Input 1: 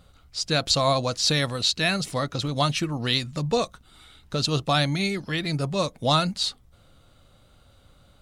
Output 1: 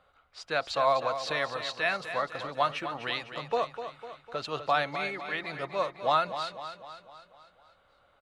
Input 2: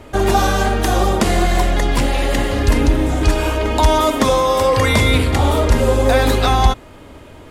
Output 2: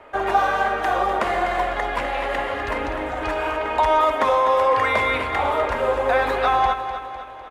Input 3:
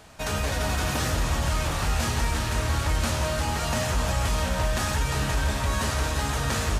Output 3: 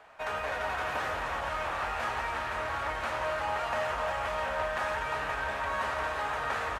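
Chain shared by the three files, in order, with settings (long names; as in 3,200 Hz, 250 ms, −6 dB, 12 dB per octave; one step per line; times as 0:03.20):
three-way crossover with the lows and the highs turned down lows −21 dB, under 500 Hz, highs −21 dB, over 2,500 Hz
on a send: repeating echo 251 ms, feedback 53%, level −10 dB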